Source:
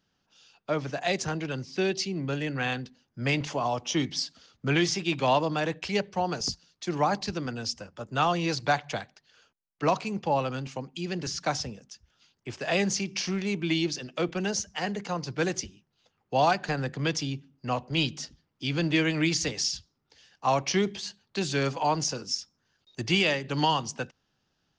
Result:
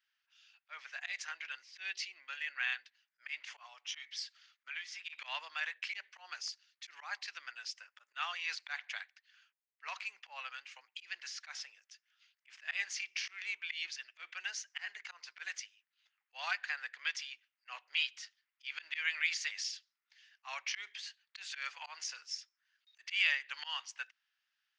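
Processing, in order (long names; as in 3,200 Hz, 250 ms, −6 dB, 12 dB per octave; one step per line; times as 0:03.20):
parametric band 7,800 Hz −11 dB 2.6 octaves
volume swells 114 ms
0:02.77–0:05.13: downward compressor 8 to 1, threshold −33 dBFS, peak gain reduction 12.5 dB
four-pole ladder high-pass 1,600 Hz, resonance 40%
level +6.5 dB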